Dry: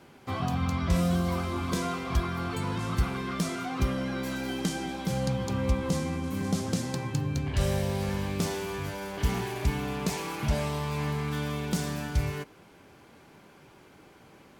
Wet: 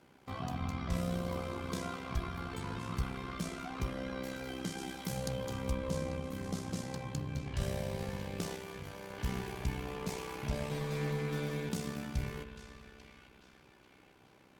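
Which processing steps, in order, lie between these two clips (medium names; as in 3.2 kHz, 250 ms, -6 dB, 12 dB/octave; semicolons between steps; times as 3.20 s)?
band-passed feedback delay 842 ms, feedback 47%, band-pass 2.8 kHz, level -10 dB; reverberation RT60 3.1 s, pre-delay 59 ms, DRR 8 dB; AM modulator 64 Hz, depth 50%; 4.77–5.74 s: treble shelf 5.7 kHz -> 9.2 kHz +11.5 dB; 8.56–9.10 s: valve stage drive 29 dB, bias 0.45; 10.70–11.69 s: comb 6.3 ms, depth 88%; trim -6 dB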